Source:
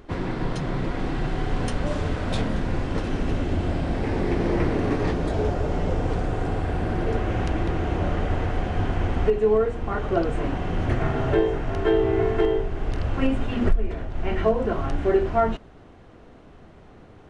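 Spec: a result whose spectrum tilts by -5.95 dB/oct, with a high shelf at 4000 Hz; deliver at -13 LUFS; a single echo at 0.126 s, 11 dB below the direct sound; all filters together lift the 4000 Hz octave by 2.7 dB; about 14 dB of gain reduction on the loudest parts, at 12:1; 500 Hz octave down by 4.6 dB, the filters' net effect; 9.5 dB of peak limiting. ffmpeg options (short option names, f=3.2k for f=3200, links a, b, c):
-af "equalizer=f=500:t=o:g=-6,highshelf=f=4k:g=-7.5,equalizer=f=4k:t=o:g=8,acompressor=threshold=-27dB:ratio=12,alimiter=level_in=4.5dB:limit=-24dB:level=0:latency=1,volume=-4.5dB,aecho=1:1:126:0.282,volume=25dB"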